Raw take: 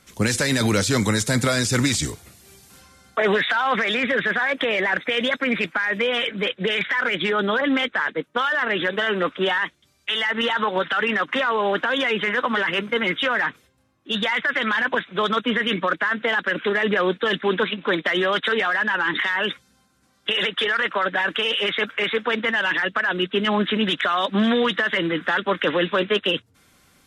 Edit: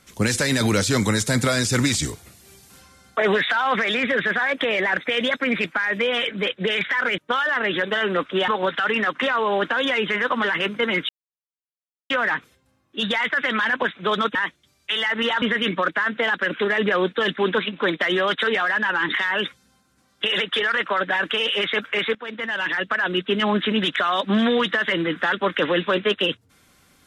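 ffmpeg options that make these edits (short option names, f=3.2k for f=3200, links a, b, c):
-filter_complex "[0:a]asplit=7[a][b][c][d][e][f][g];[a]atrim=end=7.182[h];[b]atrim=start=8.238:end=9.542[i];[c]atrim=start=10.608:end=13.22,asetpts=PTS-STARTPTS,afade=t=out:st=2.608:d=0.004:c=hsin,apad=pad_dur=1.01[j];[d]atrim=start=13.22:end=15.472,asetpts=PTS-STARTPTS,afade=t=in:d=0.004:c=hsin[k];[e]atrim=start=9.538:end=10.612[l];[f]atrim=start=15.468:end=22.2,asetpts=PTS-STARTPTS,afade=t=out:st=6.728:d=0.004:c=hsin:silence=0.149624[m];[g]atrim=start=22.2,asetpts=PTS-STARTPTS,afade=t=in:d=1.03:c=qsin:silence=0.149624[n];[h][i]acrossfade=d=0.004:c1=hsin:c2=hsin[o];[j][k]concat=n=2:v=0:a=1[p];[o][p]acrossfade=d=0.004:c1=hsin:c2=hsin[q];[q][l]acrossfade=d=0.004:c1=hsin:c2=hsin[r];[m][n]concat=n=2:v=0:a=1[s];[r][s]acrossfade=d=0.004:c1=hsin:c2=hsin"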